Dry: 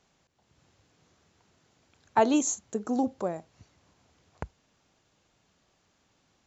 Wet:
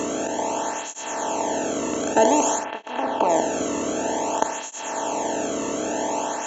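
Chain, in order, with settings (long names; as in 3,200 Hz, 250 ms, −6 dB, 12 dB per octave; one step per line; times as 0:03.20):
compressor on every frequency bin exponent 0.2
0:02.63–0:03.28: low-pass filter 2,800 Hz → 4,500 Hz 24 dB per octave
through-zero flanger with one copy inverted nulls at 0.53 Hz, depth 1.3 ms
level +3 dB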